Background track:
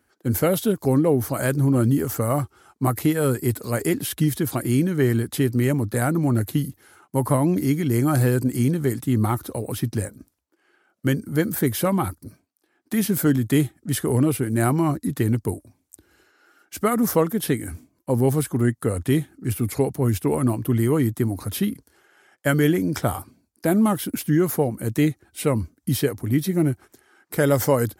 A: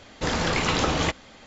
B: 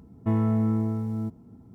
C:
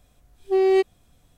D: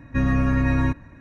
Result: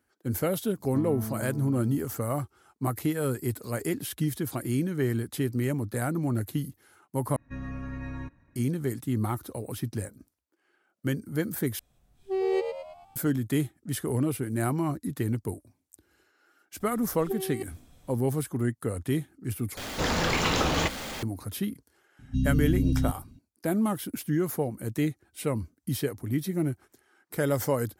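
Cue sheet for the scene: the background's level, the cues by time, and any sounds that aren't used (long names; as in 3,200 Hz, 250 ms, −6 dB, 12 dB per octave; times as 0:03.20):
background track −7.5 dB
0:00.68: mix in B −12 dB
0:07.36: overwrite with D −16.5 dB
0:11.79: overwrite with C −9 dB + echo with shifted repeats 109 ms, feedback 47%, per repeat +80 Hz, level −7 dB
0:16.80: mix in C −7 dB + compressor whose output falls as the input rises −24 dBFS, ratio −0.5
0:19.77: overwrite with A −3.5 dB + converter with a step at zero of −28.5 dBFS
0:22.19: mix in D −4 dB + linear-phase brick-wall band-stop 280–2,600 Hz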